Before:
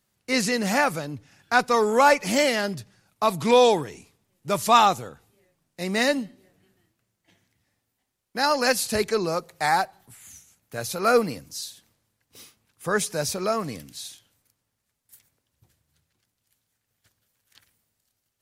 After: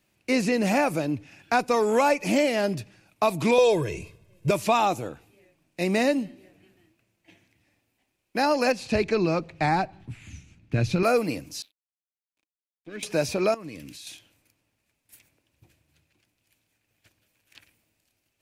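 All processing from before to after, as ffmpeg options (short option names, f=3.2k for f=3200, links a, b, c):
-filter_complex "[0:a]asettb=1/sr,asplit=3[a][b][c];[a]atrim=end=3.584[d];[b]atrim=start=3.58:end=4.51,asetpts=PTS-STARTPTS,afade=t=in:d=0.004:c=qsin,afade=t=out:st=0.926:d=0.004:c=qsin,lowshelf=f=360:g=11,aecho=1:1:1.9:0.84,atrim=end_sample=41013[e];[c]atrim=start=4.506[f];[d][e]acrossfade=d=0.004:c1=hsin:c2=qsin[g];[g][f]acrossfade=d=0.004:c1=qsin:c2=hsin,asettb=1/sr,asplit=3[h][i][j];[h]atrim=end=8.724[k];[i]atrim=start=8.72:end=11.03,asetpts=PTS-STARTPTS,afade=t=in:d=0.004:c=qsin,afade=t=out:st=2.306:d=0.004:c=qsin,asubboost=boost=12:cutoff=230,lowpass=4.3k[l];[j]atrim=start=11.026[m];[k][l]acrossfade=d=0.004:c1=hsin:c2=qsin[n];[n][m]acrossfade=d=0.004:c1=qsin:c2=hsin,asettb=1/sr,asplit=3[o][p][q];[o]atrim=end=11.624[r];[p]atrim=start=11.62:end=13.03,asetpts=PTS-STARTPTS,afade=t=in:d=0.004:c=qsin,afade=t=out:st=1.406:d=0.004:c=qsin,asplit=3[s][t][u];[s]bandpass=f=270:t=q:w=8,volume=0dB[v];[t]bandpass=f=2.29k:t=q:w=8,volume=-6dB[w];[u]bandpass=f=3.01k:t=q:w=8,volume=-9dB[x];[v][w][x]amix=inputs=3:normalize=0,equalizer=f=3.7k:w=7.8:g=7,aeval=exprs='sgn(val(0))*max(abs(val(0))-0.00211,0)':c=same[y];[q]atrim=start=13.026[z];[r][y]acrossfade=d=0.004:c1=hsin:c2=qsin[aa];[aa][z]acrossfade=d=0.004:c1=qsin:c2=hsin,asettb=1/sr,asplit=3[ab][ac][ad];[ab]atrim=end=13.544[ae];[ac]atrim=start=13.54:end=14.07,asetpts=PTS-STARTPTS,afade=t=in:d=0.004:c=qsin,afade=t=out:st=0.526:d=0.004:c=qsin,equalizer=f=720:t=o:w=0.3:g=-8,acompressor=threshold=-42dB:ratio=5:attack=3.2:release=140:knee=1:detection=peak[af];[ad]atrim=start=14.066[ag];[ae][af]acrossfade=d=0.004:c1=hsin:c2=qsin[ah];[ah][ag]acrossfade=d=0.004:c1=qsin:c2=hsin,equalizer=f=315:t=o:w=0.33:g=9,equalizer=f=630:t=o:w=0.33:g=4,equalizer=f=1.25k:t=o:w=0.33:g=-3,equalizer=f=2.5k:t=o:w=0.33:g=11,acrossover=split=1200|5100[ai][aj][ak];[ai]acompressor=threshold=-23dB:ratio=4[al];[aj]acompressor=threshold=-36dB:ratio=4[am];[ak]acompressor=threshold=-39dB:ratio=4[an];[al][am][an]amix=inputs=3:normalize=0,highshelf=f=5.5k:g=-5,volume=3dB"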